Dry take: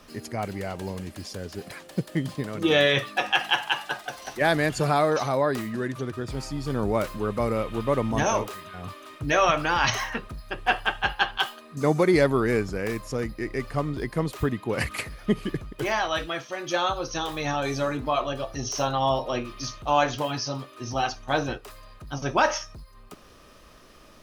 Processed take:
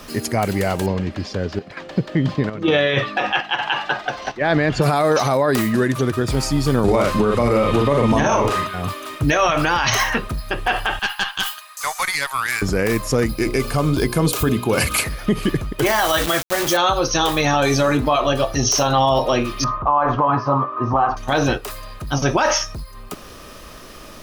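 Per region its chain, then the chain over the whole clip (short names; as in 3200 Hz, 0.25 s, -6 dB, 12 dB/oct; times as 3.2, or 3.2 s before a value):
0.86–4.82 chopper 1.1 Hz, depth 65%, duty 80% + air absorption 190 m
6.84–8.67 air absorption 50 m + doubler 42 ms -3 dB + three-band squash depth 70%
10.99–12.62 inverse Chebyshev high-pass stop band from 330 Hz, stop band 50 dB + tilt +2 dB/oct + tube stage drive 14 dB, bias 0.75
13.26–15.04 Butterworth band-stop 1900 Hz, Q 6.7 + high shelf 3800 Hz +6.5 dB + notches 60/120/180/240/300/360/420/480/540/600 Hz
15.86–16.77 notch 2500 Hz, Q 6.6 + requantised 6-bit, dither none
19.64–21.17 synth low-pass 1100 Hz, resonance Q 5.7 + compressor 2.5:1, threshold -23 dBFS
whole clip: high shelf 9500 Hz +6.5 dB; maximiser +19.5 dB; gain -7 dB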